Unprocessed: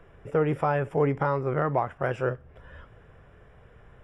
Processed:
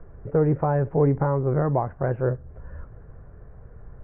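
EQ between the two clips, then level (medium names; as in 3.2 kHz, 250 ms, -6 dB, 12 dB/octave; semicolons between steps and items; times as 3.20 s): low-pass 1.7 kHz 24 dB/octave; dynamic bell 1.3 kHz, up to -6 dB, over -46 dBFS, Q 4.9; tilt EQ -2.5 dB/octave; 0.0 dB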